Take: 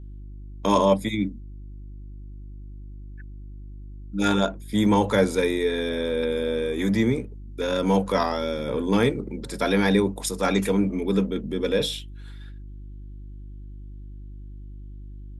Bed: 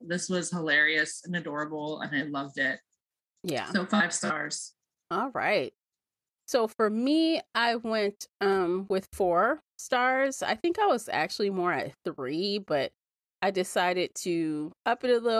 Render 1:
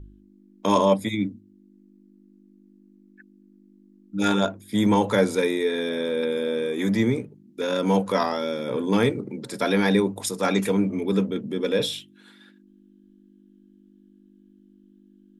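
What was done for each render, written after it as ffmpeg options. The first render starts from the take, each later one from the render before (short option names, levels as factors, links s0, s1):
-af "bandreject=f=50:t=h:w=4,bandreject=f=100:t=h:w=4,bandreject=f=150:t=h:w=4"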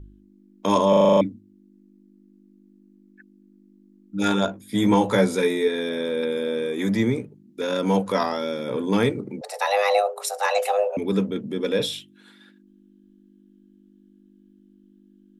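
-filter_complex "[0:a]asettb=1/sr,asplit=3[s0][s1][s2];[s0]atrim=end=4.474[s3];[s1]atrim=start=4.47:end=5.68,asetpts=PTS-STARTPTS,afade=t=in:d=0.004:c=qsin,afade=t=out:st=1.206:d=0.004:c=qsin,asplit=2[s4][s5];[s5]adelay=16,volume=0.531[s6];[s4][s6]amix=inputs=2:normalize=0,atrim=end_sample=53361[s7];[s2]atrim=start=5.676[s8];[s3][s7]acrossfade=d=0.004:c1=hsin:c2=qsin[s9];[s9][s8]acrossfade=d=0.004:c1=qsin:c2=hsin,asettb=1/sr,asplit=3[s10][s11][s12];[s10]atrim=end=9.414[s13];[s11]atrim=start=9.41:end=10.97,asetpts=PTS-STARTPTS,afade=t=in:d=0.004:c=qsin,afade=t=out:st=1.556:d=0.004:c=qsin,afreqshift=310[s14];[s12]atrim=start=10.966[s15];[s13][s14]acrossfade=d=0.004:c1=hsin:c2=qsin[s16];[s16][s15]acrossfade=d=0.004:c1=qsin:c2=hsin,asplit=9[s17][s18][s19][s20][s21][s22][s23][s24][s25];[s17]atrim=end=0.932[s26];[s18]atrim=start=0.888:end=0.932[s27];[s19]atrim=start=0.888:end=0.932[s28];[s20]atrim=start=0.888:end=0.932[s29];[s21]atrim=start=0.888:end=0.932[s30];[s22]atrim=start=0.888:end=0.932[s31];[s23]atrim=start=0.888:end=0.932[s32];[s24]atrim=start=0.888:end=0.932[s33];[s25]atrim=start=1.208[s34];[s26][s27]acrossfade=d=0.004:c1=hsin:c2=hsin[s35];[s35][s28]acrossfade=d=0.004:c1=hsin:c2=hsin[s36];[s36][s29]acrossfade=d=0.004:c1=hsin:c2=hsin[s37];[s37][s30]acrossfade=d=0.004:c1=hsin:c2=hsin[s38];[s38][s31]acrossfade=d=0.004:c1=hsin:c2=hsin[s39];[s39][s32]acrossfade=d=0.004:c1=hsin:c2=hsin[s40];[s40][s33]acrossfade=d=0.004:c1=hsin:c2=hsin[s41];[s41][s34]acrossfade=d=0.004:c1=hsin:c2=hsin"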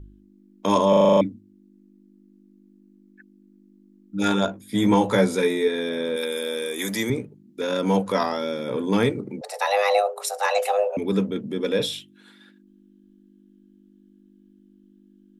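-filter_complex "[0:a]asettb=1/sr,asplit=3[s0][s1][s2];[s0]atrim=end=6.164[s3];[s1]atrim=start=6.16:end=7.1,asetpts=PTS-STARTPTS,afade=t=in:d=0.004:c=qsin,afade=t=out:st=0.936:d=0.004:c=qsin,aemphasis=mode=production:type=riaa[s4];[s2]atrim=start=7.096[s5];[s3][s4]acrossfade=d=0.004:c1=hsin:c2=qsin[s6];[s6][s5]acrossfade=d=0.004:c1=qsin:c2=hsin"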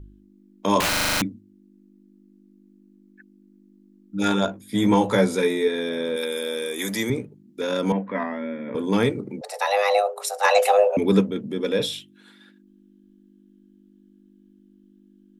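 -filter_complex "[0:a]asettb=1/sr,asplit=3[s0][s1][s2];[s0]atrim=end=0.804[s3];[s1]atrim=start=0.8:end=1.22,asetpts=PTS-STARTPTS,afade=t=in:d=0.004:c=qsin,afade=t=out:st=0.416:d=0.004:c=qsin,aeval=exprs='(mod(7.94*val(0)+1,2)-1)/7.94':c=same[s4];[s2]atrim=start=1.216[s5];[s3][s4]acrossfade=d=0.004:c1=hsin:c2=qsin[s6];[s6][s5]acrossfade=d=0.004:c1=qsin:c2=hsin,asettb=1/sr,asplit=3[s7][s8][s9];[s7]atrim=end=7.924[s10];[s8]atrim=start=7.92:end=8.75,asetpts=PTS-STARTPTS,afade=t=in:d=0.004:c=qsin,afade=t=out:st=0.826:d=0.004:c=qsin,highpass=230,equalizer=f=240:t=q:w=4:g=7,equalizer=f=360:t=q:w=4:g=-8,equalizer=f=500:t=q:w=4:g=-7,equalizer=f=810:t=q:w=4:g=-9,equalizer=f=1300:t=q:w=4:g=-9,equalizer=f=1900:t=q:w=4:g=6,lowpass=f=2100:w=0.5412,lowpass=f=2100:w=1.3066[s11];[s9]atrim=start=8.746[s12];[s10][s11]acrossfade=d=0.004:c1=hsin:c2=qsin[s13];[s13][s12]acrossfade=d=0.004:c1=qsin:c2=hsin,asplit=3[s14][s15][s16];[s14]afade=t=out:st=10.43:d=0.02[s17];[s15]acontrast=31,afade=t=in:st=10.43:d=0.02,afade=t=out:st=11.2:d=0.02[s18];[s16]afade=t=in:st=11.2:d=0.02[s19];[s17][s18][s19]amix=inputs=3:normalize=0"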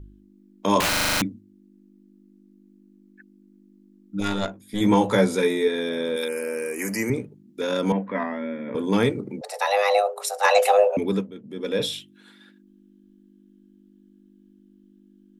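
-filter_complex "[0:a]asettb=1/sr,asplit=3[s0][s1][s2];[s0]atrim=end=4.204[s3];[s1]atrim=start=4.2:end=4.81,asetpts=PTS-STARTPTS,afade=t=in:d=0.004:c=qsin,afade=t=out:st=0.606:d=0.004:c=qsin,aeval=exprs='(tanh(5.62*val(0)+0.75)-tanh(0.75))/5.62':c=same[s4];[s2]atrim=start=4.806[s5];[s3][s4]acrossfade=d=0.004:c1=hsin:c2=qsin[s6];[s6][s5]acrossfade=d=0.004:c1=qsin:c2=hsin,asettb=1/sr,asplit=3[s7][s8][s9];[s7]atrim=end=6.284[s10];[s8]atrim=start=6.28:end=7.14,asetpts=PTS-STARTPTS,afade=t=in:d=0.004:c=qsin,afade=t=out:st=0.856:d=0.004:c=qsin,asuperstop=centerf=3600:order=20:qfactor=3[s11];[s9]atrim=start=7.136[s12];[s10][s11]acrossfade=d=0.004:c1=hsin:c2=qsin[s13];[s13][s12]acrossfade=d=0.004:c1=qsin:c2=hsin,asplit=3[s14][s15][s16];[s14]atrim=end=11.28,asetpts=PTS-STARTPTS,afade=t=out:st=10.84:d=0.44:silence=0.251189[s17];[s15]atrim=start=11.28:end=11.43,asetpts=PTS-STARTPTS,volume=0.251[s18];[s16]atrim=start=11.43,asetpts=PTS-STARTPTS,afade=t=in:d=0.44:silence=0.251189[s19];[s17][s18][s19]concat=n=3:v=0:a=1"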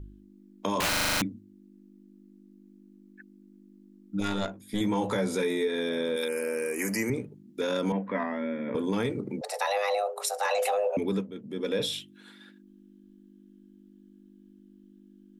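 -af "alimiter=limit=0.188:level=0:latency=1:release=19,acompressor=threshold=0.0398:ratio=2"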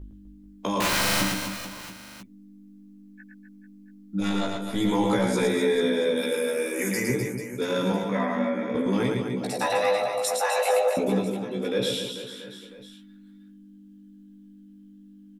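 -filter_complex "[0:a]asplit=2[s0][s1];[s1]adelay=16,volume=0.668[s2];[s0][s2]amix=inputs=2:normalize=0,aecho=1:1:110|253|438.9|680.6|994.7:0.631|0.398|0.251|0.158|0.1"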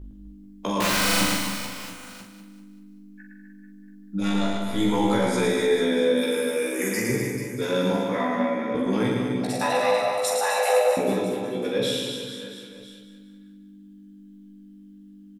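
-filter_complex "[0:a]asplit=2[s0][s1];[s1]adelay=44,volume=0.562[s2];[s0][s2]amix=inputs=2:normalize=0,aecho=1:1:194|388|582|776|970:0.335|0.141|0.0591|0.0248|0.0104"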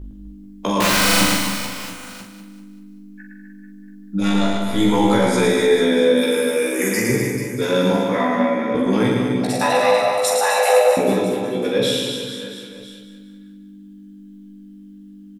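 -af "volume=2"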